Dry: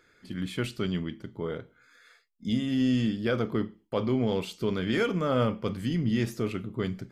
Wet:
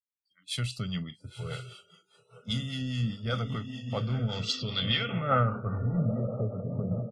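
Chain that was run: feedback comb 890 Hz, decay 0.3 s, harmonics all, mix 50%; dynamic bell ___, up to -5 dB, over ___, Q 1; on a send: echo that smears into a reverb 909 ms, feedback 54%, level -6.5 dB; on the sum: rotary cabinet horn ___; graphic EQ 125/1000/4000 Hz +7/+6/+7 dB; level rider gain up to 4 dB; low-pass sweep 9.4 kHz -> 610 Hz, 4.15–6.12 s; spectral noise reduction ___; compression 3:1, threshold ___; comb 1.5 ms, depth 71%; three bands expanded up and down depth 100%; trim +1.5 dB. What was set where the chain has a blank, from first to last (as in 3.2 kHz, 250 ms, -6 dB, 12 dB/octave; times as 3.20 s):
540 Hz, -48 dBFS, 5 Hz, 28 dB, -31 dBFS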